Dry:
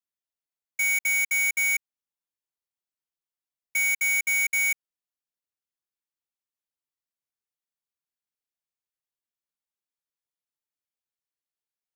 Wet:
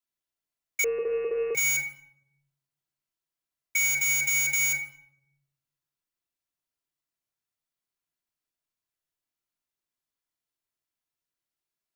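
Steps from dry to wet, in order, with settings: shoebox room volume 2000 m³, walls furnished, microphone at 3 m; 0.84–1.55 inverted band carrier 2700 Hz

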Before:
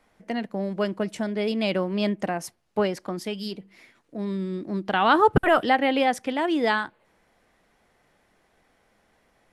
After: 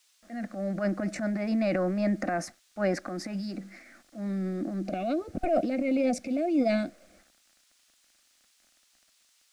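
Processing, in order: spectral gain 4.82–7.19, 740–2100 Hz -23 dB; AGC gain up to 8 dB; transient shaper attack -10 dB, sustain +9 dB; requantised 8-bit, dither none; fixed phaser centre 640 Hz, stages 8; added noise violet -43 dBFS; air absorption 97 m; gain -6 dB

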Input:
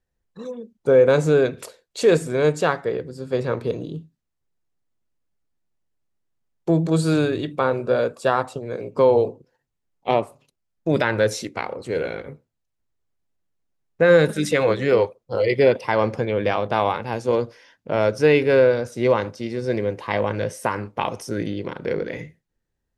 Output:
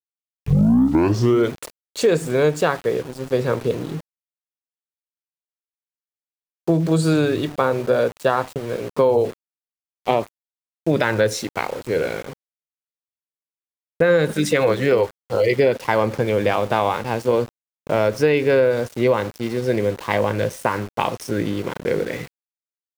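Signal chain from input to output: tape start at the beginning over 1.60 s; sample gate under -36 dBFS; compressor, threshold -16 dBFS, peak gain reduction 6.5 dB; gain +3.5 dB

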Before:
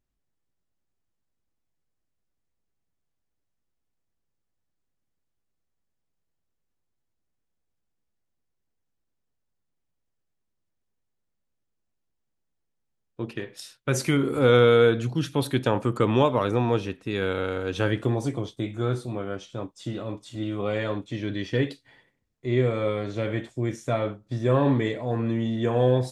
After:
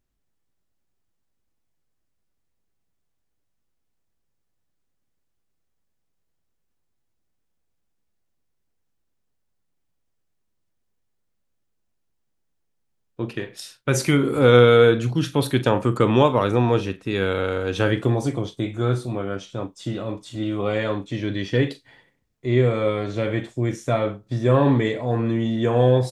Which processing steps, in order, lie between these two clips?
doubler 41 ms -13.5 dB; gain +4 dB

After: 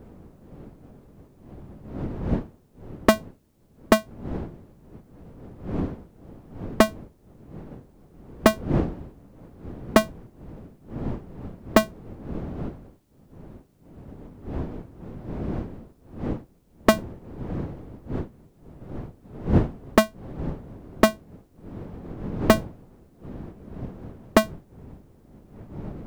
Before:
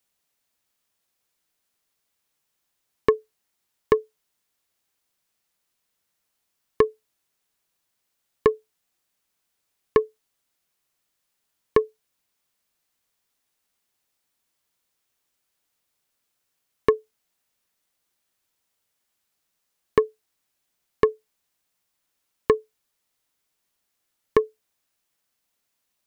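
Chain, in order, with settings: cycle switcher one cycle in 2, inverted; wind noise 270 Hz -36 dBFS; gain +2 dB

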